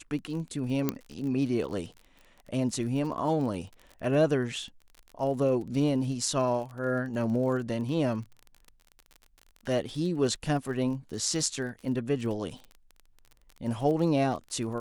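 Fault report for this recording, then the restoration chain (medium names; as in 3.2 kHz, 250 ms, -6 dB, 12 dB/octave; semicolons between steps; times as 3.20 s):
crackle 31 per s -37 dBFS
0.89 s: pop -12 dBFS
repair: de-click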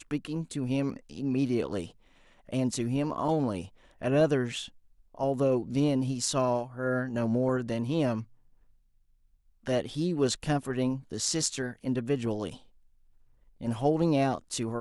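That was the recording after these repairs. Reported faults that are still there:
0.89 s: pop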